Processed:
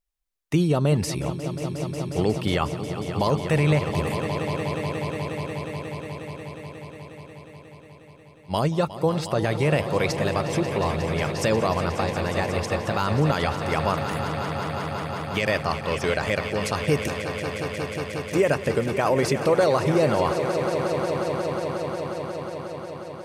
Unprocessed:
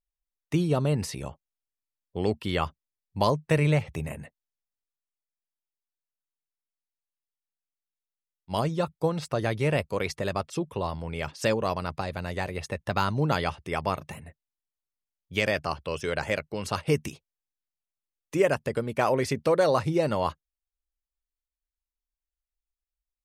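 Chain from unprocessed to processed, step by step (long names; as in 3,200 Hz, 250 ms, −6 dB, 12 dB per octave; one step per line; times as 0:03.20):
echo that builds up and dies away 180 ms, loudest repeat 5, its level −13.5 dB
brickwall limiter −15.5 dBFS, peak gain reduction 6.5 dB
level +5 dB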